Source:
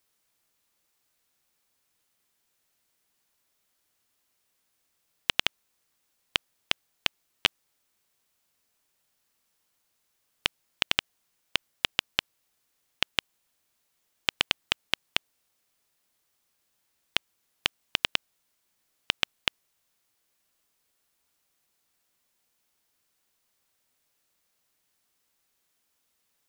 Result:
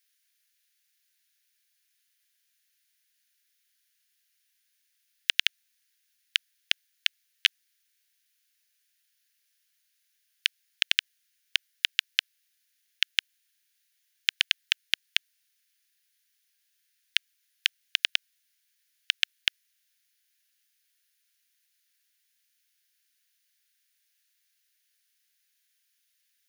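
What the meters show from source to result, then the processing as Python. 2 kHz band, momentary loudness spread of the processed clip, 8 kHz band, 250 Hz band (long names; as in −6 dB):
+1.5 dB, 5 LU, +1.0 dB, below −40 dB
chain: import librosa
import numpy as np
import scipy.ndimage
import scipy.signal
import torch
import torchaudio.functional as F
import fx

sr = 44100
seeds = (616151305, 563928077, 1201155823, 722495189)

y = scipy.signal.sosfilt(scipy.signal.ellip(4, 1.0, 50, 1600.0, 'highpass', fs=sr, output='sos'), x)
y = fx.notch(y, sr, hz=7800.0, q=7.0)
y = y * 10.0 ** (2.5 / 20.0)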